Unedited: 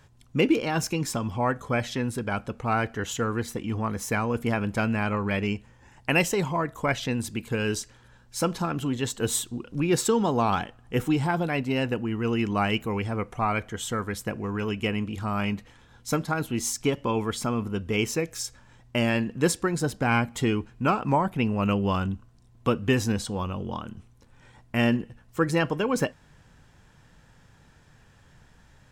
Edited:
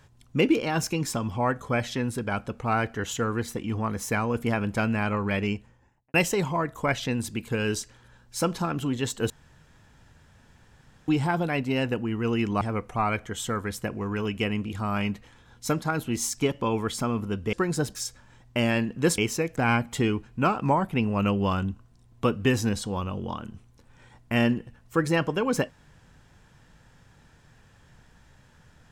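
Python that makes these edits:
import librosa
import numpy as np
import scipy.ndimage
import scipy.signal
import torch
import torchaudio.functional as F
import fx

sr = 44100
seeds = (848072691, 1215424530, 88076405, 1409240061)

y = fx.studio_fade_out(x, sr, start_s=5.47, length_s=0.67)
y = fx.edit(y, sr, fx.room_tone_fill(start_s=9.3, length_s=1.78),
    fx.cut(start_s=12.61, length_s=0.43),
    fx.swap(start_s=17.96, length_s=0.38, other_s=19.57, other_length_s=0.42), tone=tone)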